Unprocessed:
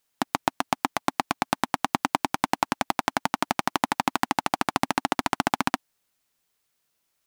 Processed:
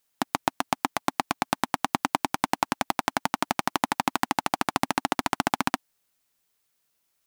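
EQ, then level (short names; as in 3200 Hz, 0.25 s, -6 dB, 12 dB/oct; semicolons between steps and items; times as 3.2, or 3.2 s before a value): high shelf 8300 Hz +3.5 dB; -1.0 dB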